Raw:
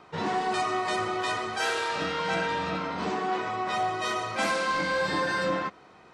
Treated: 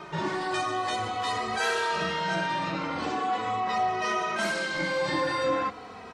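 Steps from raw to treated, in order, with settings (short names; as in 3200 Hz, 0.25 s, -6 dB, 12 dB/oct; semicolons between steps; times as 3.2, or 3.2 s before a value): 3.6–4.36 LPF 6300 Hz 12 dB/oct; in parallel at -2 dB: negative-ratio compressor -40 dBFS, ratio -1; on the sum: endless flanger 2.8 ms -0.44 Hz; gain +1.5 dB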